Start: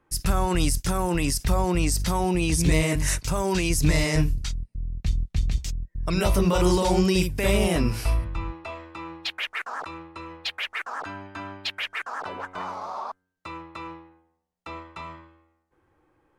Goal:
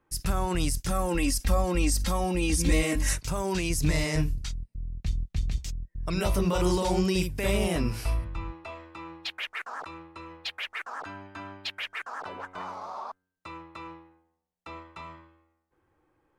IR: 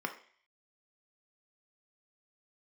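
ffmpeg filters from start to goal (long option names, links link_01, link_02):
-filter_complex "[0:a]asettb=1/sr,asplit=3[link_01][link_02][link_03];[link_01]atrim=end=0.904[link_04];[link_02]atrim=start=0.9:end=3.13,asetpts=PTS-STARTPTS,afade=type=in:duration=0.004:curve=qsin,afade=type=out:start_time=2.226:duration=0.004:curve=qsin,aecho=1:1:3.7:0.84,atrim=end_sample=98343[link_05];[link_03]atrim=start=3.126[link_06];[link_04][link_05]acrossfade=duration=0.004:curve1=hsin:curve2=qsin[link_07];[link_07][link_06]acrossfade=duration=0.004:curve1=qsin:curve2=hsin,volume=-4.5dB"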